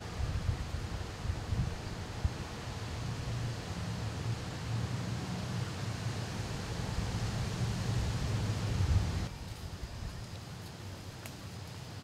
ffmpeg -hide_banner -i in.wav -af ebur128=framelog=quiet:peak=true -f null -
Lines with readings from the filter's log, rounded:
Integrated loudness:
  I:         -37.6 LUFS
  Threshold: -47.6 LUFS
Loudness range:
  LRA:         3.6 LU
  Threshold: -57.1 LUFS
  LRA low:   -38.6 LUFS
  LRA high:  -35.0 LUFS
True peak:
  Peak:      -18.6 dBFS